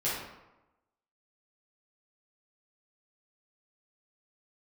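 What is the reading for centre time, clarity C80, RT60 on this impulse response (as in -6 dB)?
66 ms, 4.0 dB, 1.0 s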